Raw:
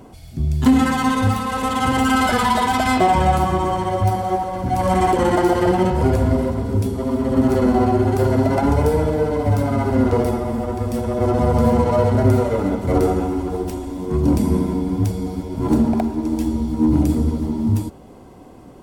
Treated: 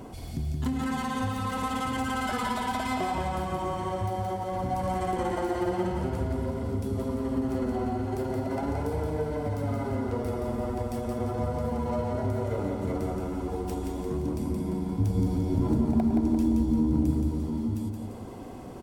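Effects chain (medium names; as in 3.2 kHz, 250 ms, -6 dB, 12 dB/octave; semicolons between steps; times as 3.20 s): compression 5:1, threshold -30 dBFS, peak gain reduction 18 dB; 14.98–17.11 s: bass shelf 400 Hz +7.5 dB; feedback delay 173 ms, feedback 47%, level -4.5 dB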